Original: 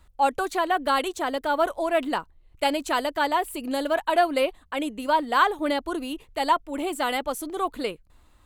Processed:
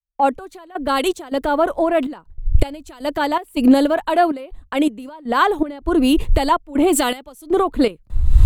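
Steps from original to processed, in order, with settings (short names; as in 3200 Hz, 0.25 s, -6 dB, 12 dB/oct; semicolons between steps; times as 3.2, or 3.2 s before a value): recorder AGC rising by 53 dB/s; gate with hold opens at -35 dBFS; low shelf 440 Hz +10.5 dB; in parallel at 0 dB: limiter -13 dBFS, peak gain reduction 9 dB; on the sum: step gate "xx..xx.xxxx." 80 bpm -12 dB; three-band expander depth 100%; gain -3 dB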